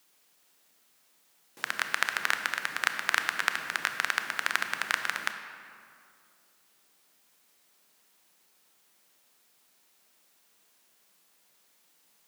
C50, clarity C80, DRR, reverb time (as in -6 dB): 7.5 dB, 8.5 dB, 6.5 dB, 2.4 s